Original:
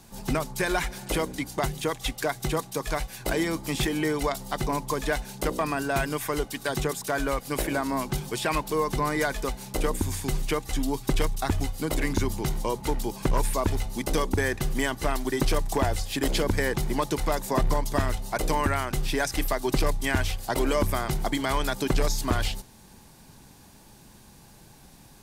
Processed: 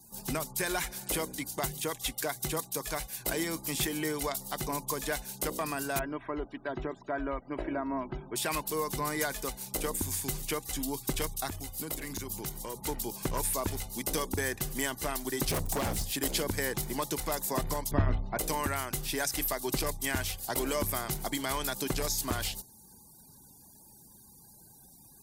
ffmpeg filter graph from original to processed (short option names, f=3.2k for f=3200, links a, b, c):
-filter_complex "[0:a]asettb=1/sr,asplit=3[a][b][c];[a]atrim=end=5.994[d];[b]atrim=start=5.99:end=8.36,asetpts=PTS-STARTPTS,afade=t=in:d=0.004:c=qsin,afade=t=out:st=2.366:d=0.004:c=qsin,lowpass=1.5k,aecho=1:1:3.1:0.48,atrim=end_sample=104517[e];[c]atrim=start=8.356[f];[d][e]acrossfade=d=0.004:c1=hsin:c2=qsin[g];[g][f]acrossfade=d=0.004:c1=qsin:c2=hsin,asettb=1/sr,asplit=3[h][i][j];[h]atrim=end=11.494[k];[i]atrim=start=11.49:end=12.77,asetpts=PTS-STARTPTS,afade=t=in:d=0.004:c=qsin,afade=t=out:st=1.276:d=0.004:c=qsin,highshelf=f=12k:g=3.5,acompressor=threshold=-28dB:ratio=3:attack=3.2:release=140:knee=1:detection=peak,aeval=exprs='clip(val(0),-1,0.0501)':c=same[l];[j]atrim=start=12.766[m];[k][l]acrossfade=d=0.004:c1=hsin:c2=qsin[n];[n][m]acrossfade=d=0.004:c1=qsin:c2=hsin,asettb=1/sr,asplit=3[o][p][q];[o]atrim=end=15.494[r];[p]atrim=start=15.49:end=16.11,asetpts=PTS-STARTPTS,afade=t=in:d=0.004:c=qsin,afade=t=out:st=0.616:d=0.004:c=qsin,lowshelf=f=260:g=9.5,bandreject=f=248.8:t=h:w=4,bandreject=f=497.6:t=h:w=4,bandreject=f=746.4:t=h:w=4,aeval=exprs='0.141*(abs(mod(val(0)/0.141+3,4)-2)-1)':c=same[s];[q]atrim=start=16.106[t];[r][s]acrossfade=d=0.004:c1=hsin:c2=qsin[u];[u][t]acrossfade=d=0.004:c1=qsin:c2=hsin,asettb=1/sr,asplit=3[v][w][x];[v]atrim=end=17.914[y];[w]atrim=start=17.91:end=18.39,asetpts=PTS-STARTPTS,afade=t=in:d=0.004:c=qsin,afade=t=out:st=0.476:d=0.004:c=qsin,lowpass=2.3k,lowshelf=f=280:g=12,bandreject=f=66.04:t=h:w=4,bandreject=f=132.08:t=h:w=4,bandreject=f=198.12:t=h:w=4,bandreject=f=264.16:t=h:w=4,bandreject=f=330.2:t=h:w=4,bandreject=f=396.24:t=h:w=4,bandreject=f=462.28:t=h:w=4,bandreject=f=528.32:t=h:w=4,bandreject=f=594.36:t=h:w=4,bandreject=f=660.4:t=h:w=4,bandreject=f=726.44:t=h:w=4,bandreject=f=792.48:t=h:w=4,bandreject=f=858.52:t=h:w=4,bandreject=f=924.56:t=h:w=4,bandreject=f=990.6:t=h:w=4,bandreject=f=1.05664k:t=h:w=4,bandreject=f=1.12268k:t=h:w=4,bandreject=f=1.18872k:t=h:w=4[z];[x]atrim=start=18.386[aa];[y][z]acrossfade=d=0.004:c1=hsin:c2=qsin[ab];[ab][aa]acrossfade=d=0.004:c1=qsin:c2=hsin,highpass=f=61:p=1,aemphasis=mode=production:type=50kf,afftfilt=real='re*gte(hypot(re,im),0.00355)':imag='im*gte(hypot(re,im),0.00355)':win_size=1024:overlap=0.75,volume=-7dB"